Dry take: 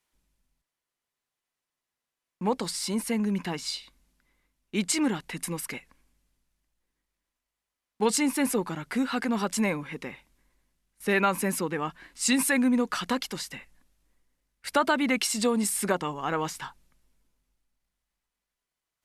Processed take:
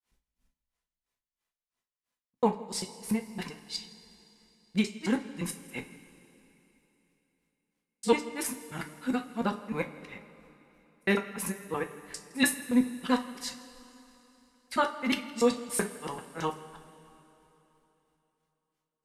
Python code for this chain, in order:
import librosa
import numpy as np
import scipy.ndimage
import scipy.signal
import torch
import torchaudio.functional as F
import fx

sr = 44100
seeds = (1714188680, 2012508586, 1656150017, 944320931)

p1 = fx.local_reverse(x, sr, ms=97.0)
p2 = fx.granulator(p1, sr, seeds[0], grain_ms=225.0, per_s=3.0, spray_ms=23.0, spread_st=0)
p3 = p2 + fx.echo_single(p2, sr, ms=164, db=-22.5, dry=0)
y = fx.rev_double_slope(p3, sr, seeds[1], early_s=0.26, late_s=3.4, knee_db=-19, drr_db=4.0)